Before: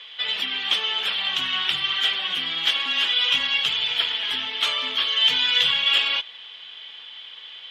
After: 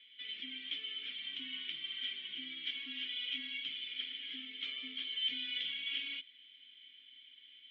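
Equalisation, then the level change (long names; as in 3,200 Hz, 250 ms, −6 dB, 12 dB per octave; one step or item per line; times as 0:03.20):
formant filter i
high-frequency loss of the air 100 metres
−6.0 dB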